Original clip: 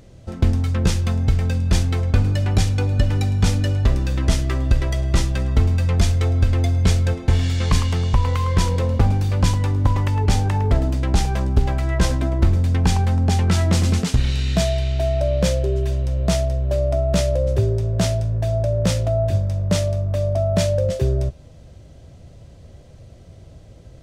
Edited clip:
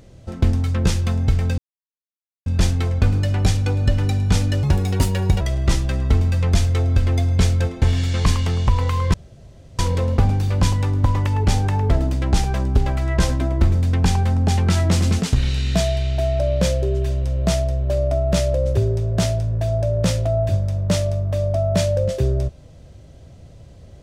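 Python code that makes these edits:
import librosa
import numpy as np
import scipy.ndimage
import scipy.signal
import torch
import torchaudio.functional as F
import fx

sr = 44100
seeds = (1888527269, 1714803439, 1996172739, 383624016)

y = fx.edit(x, sr, fx.insert_silence(at_s=1.58, length_s=0.88),
    fx.speed_span(start_s=3.75, length_s=1.12, speed=1.44),
    fx.insert_room_tone(at_s=8.6, length_s=0.65), tone=tone)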